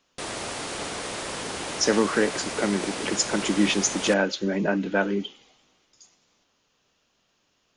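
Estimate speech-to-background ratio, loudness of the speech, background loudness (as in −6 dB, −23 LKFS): 7.5 dB, −24.5 LKFS, −32.0 LKFS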